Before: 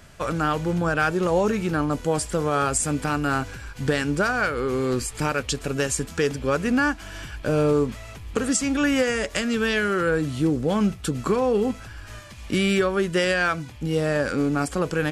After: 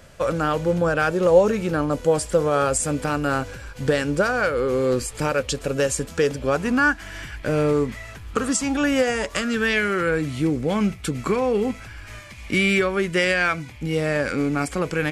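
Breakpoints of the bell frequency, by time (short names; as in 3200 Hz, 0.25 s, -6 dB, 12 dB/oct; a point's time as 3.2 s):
bell +10.5 dB 0.31 oct
6.37 s 530 Hz
7.05 s 2000 Hz
8.01 s 2000 Hz
8.97 s 590 Hz
9.73 s 2200 Hz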